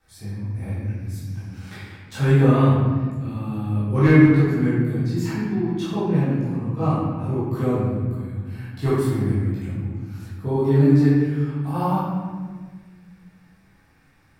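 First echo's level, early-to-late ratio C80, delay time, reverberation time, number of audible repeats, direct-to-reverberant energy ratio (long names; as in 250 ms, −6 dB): no echo audible, 0.5 dB, no echo audible, 1.6 s, no echo audible, −12.0 dB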